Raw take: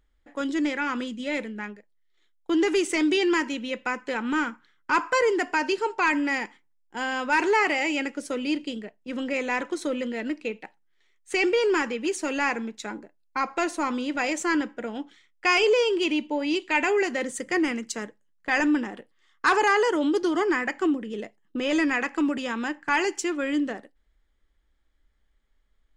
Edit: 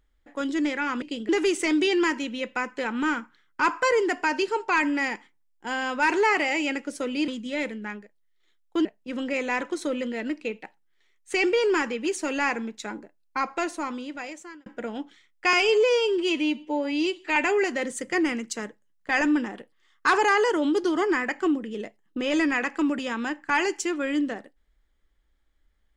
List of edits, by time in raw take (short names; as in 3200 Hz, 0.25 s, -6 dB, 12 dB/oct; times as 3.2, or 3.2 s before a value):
1.02–2.59 swap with 8.58–8.85
13.37–14.66 fade out
15.53–16.75 stretch 1.5×